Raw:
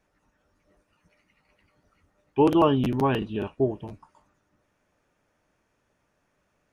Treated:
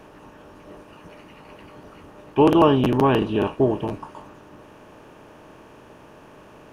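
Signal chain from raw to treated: per-bin compression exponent 0.6; gain +2.5 dB

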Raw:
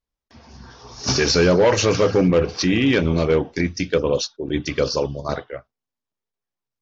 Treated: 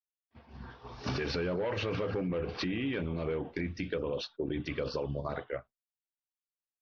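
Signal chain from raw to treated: LPF 3400 Hz 24 dB/oct; expander -40 dBFS; limiter -17.5 dBFS, peak gain reduction 10.5 dB; compressor, threshold -26 dBFS, peak gain reduction 6 dB; gain -3.5 dB

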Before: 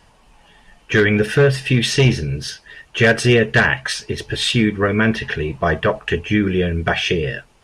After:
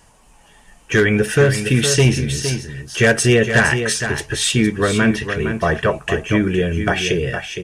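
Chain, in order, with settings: resonant high shelf 5600 Hz +7.5 dB, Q 1.5; echo 0.462 s -8.5 dB

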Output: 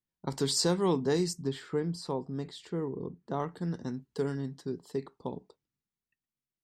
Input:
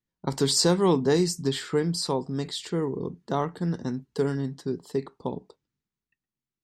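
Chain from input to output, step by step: 1.33–3.4 high shelf 2400 Hz -10 dB; gain -6 dB

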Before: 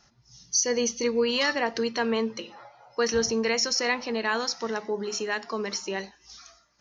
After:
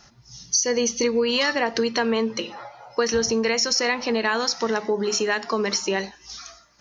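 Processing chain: compressor 4:1, threshold -28 dBFS, peak gain reduction 8 dB; gain +9 dB

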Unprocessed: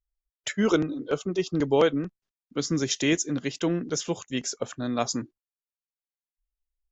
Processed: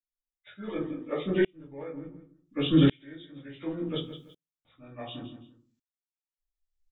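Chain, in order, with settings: nonlinear frequency compression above 1000 Hz 1.5:1; 0.79–1.2 HPF 420 Hz 6 dB/oct; 3.98–4.65 room tone; feedback echo 0.166 s, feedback 18%, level -16 dB; shoebox room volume 130 m³, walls furnished, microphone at 2.4 m; dB-ramp tremolo swelling 0.69 Hz, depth 36 dB

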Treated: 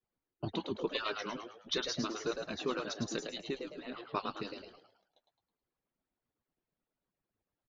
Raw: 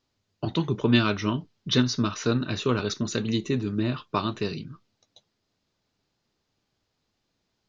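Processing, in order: median-filter separation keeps percussive; low-pass opened by the level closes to 2000 Hz, open at -23.5 dBFS; frequency-shifting echo 0.107 s, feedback 39%, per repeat +97 Hz, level -6 dB; gain -8.5 dB

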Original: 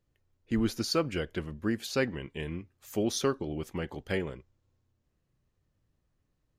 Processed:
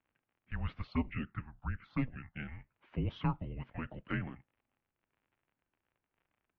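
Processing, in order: crackle 56/s -53 dBFS; mistuned SSB -250 Hz 300–3000 Hz; 0.87–2.36 envelope phaser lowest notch 260 Hz, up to 1500 Hz, full sweep at -26.5 dBFS; gain -3 dB

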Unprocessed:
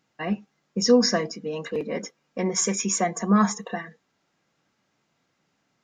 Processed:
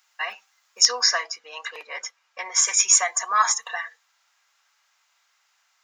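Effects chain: high shelf 6100 Hz +11.5 dB, from 0.85 s -2 dB, from 2.68 s +7.5 dB; HPF 920 Hz 24 dB/oct; gain +6.5 dB

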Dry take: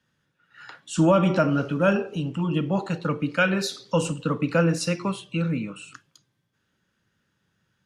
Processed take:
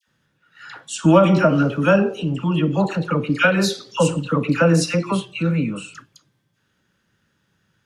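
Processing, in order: dispersion lows, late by 71 ms, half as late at 1300 Hz; gain +5.5 dB

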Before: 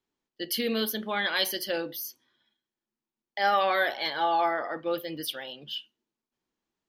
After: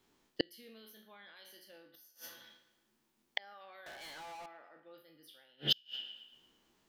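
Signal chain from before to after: spectral trails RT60 0.43 s; limiter -18.5 dBFS, peak gain reduction 7.5 dB; 3.86–4.46 sample leveller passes 5; on a send: band-limited delay 0.114 s, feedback 47%, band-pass 1500 Hz, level -12.5 dB; on the sum: flipped gate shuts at -28 dBFS, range -39 dB; gain +11.5 dB

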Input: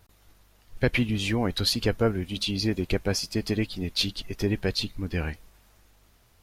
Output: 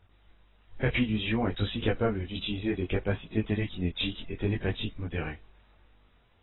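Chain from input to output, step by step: chorus voices 2, 0.61 Hz, delay 21 ms, depth 3 ms; AAC 16 kbps 22050 Hz

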